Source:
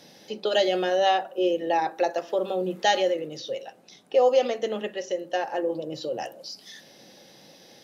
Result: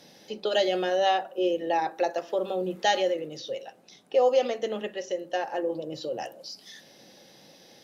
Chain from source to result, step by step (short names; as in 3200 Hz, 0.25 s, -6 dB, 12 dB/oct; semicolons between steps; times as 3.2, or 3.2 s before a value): gain -2 dB; Opus 128 kbps 48000 Hz